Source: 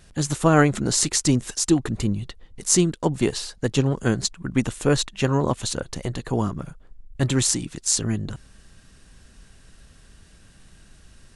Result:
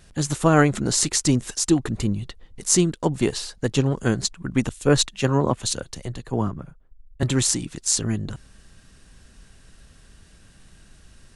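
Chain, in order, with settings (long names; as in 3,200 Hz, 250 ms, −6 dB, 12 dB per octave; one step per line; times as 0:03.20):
0:04.69–0:07.23: multiband upward and downward expander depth 70%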